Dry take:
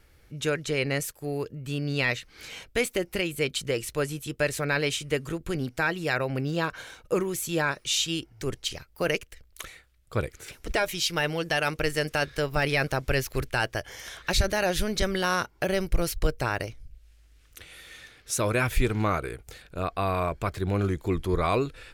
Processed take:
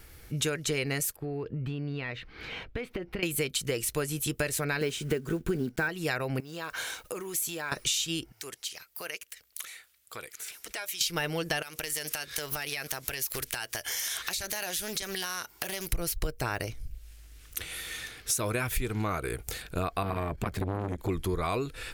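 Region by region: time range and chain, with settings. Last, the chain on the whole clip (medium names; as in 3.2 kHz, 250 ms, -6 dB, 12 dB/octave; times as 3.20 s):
1.16–3.23 s: compression 10:1, threshold -35 dBFS + distance through air 360 m
4.81–5.89 s: block-companded coder 5-bit + treble shelf 4.9 kHz -7.5 dB + small resonant body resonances 220/380/1500 Hz, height 10 dB, ringing for 30 ms
6.40–7.72 s: compression 10:1, threshold -36 dBFS + word length cut 12-bit, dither none + bass shelf 280 Hz -11.5 dB
8.32–11.01 s: high-pass 1.5 kHz 6 dB/octave + compression 2:1, threshold -52 dBFS
11.62–15.93 s: tilt EQ +3 dB/octave + compression 12:1, threshold -37 dBFS + loudspeaker Doppler distortion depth 0.29 ms
20.03–21.09 s: tone controls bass +3 dB, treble -5 dB + transformer saturation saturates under 700 Hz
whole clip: treble shelf 8.4 kHz +11 dB; band-stop 560 Hz, Q 12; compression 10:1, threshold -33 dBFS; trim +6.5 dB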